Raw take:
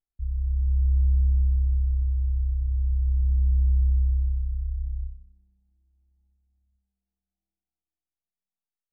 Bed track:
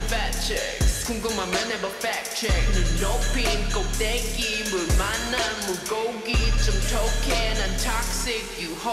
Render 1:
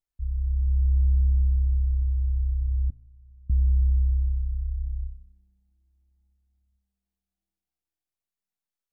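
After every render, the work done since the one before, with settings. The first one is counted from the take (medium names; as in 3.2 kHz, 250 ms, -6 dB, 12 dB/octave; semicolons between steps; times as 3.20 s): 2.90–3.50 s: inharmonic resonator 120 Hz, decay 0.83 s, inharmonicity 0.002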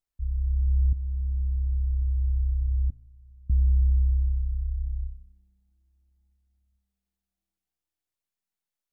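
0.93–2.28 s: fade in, from -12 dB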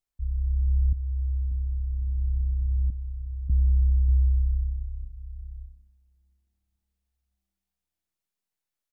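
delay 587 ms -8.5 dB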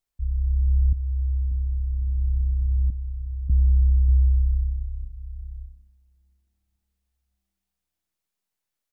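trim +3 dB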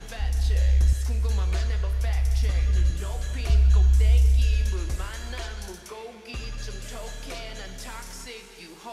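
add bed track -13 dB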